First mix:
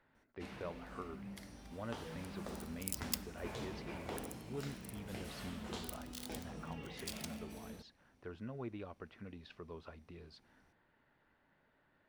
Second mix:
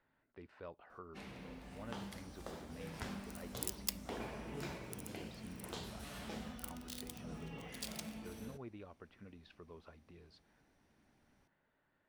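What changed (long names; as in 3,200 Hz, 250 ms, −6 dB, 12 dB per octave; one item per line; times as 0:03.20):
speech −5.5 dB
first sound: entry +0.75 s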